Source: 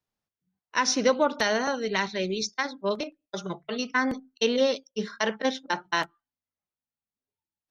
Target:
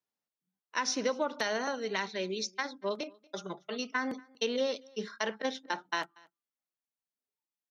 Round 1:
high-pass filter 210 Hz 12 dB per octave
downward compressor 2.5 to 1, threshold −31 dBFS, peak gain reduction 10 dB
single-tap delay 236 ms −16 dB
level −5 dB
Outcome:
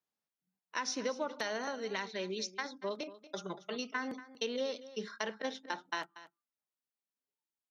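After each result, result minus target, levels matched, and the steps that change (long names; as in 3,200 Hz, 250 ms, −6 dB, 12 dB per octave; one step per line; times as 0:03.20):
echo-to-direct +10 dB; downward compressor: peak gain reduction +5 dB
change: single-tap delay 236 ms −26 dB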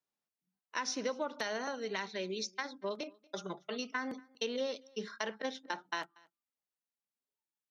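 downward compressor: peak gain reduction +5 dB
change: downward compressor 2.5 to 1, threshold −22.5 dBFS, peak gain reduction 5 dB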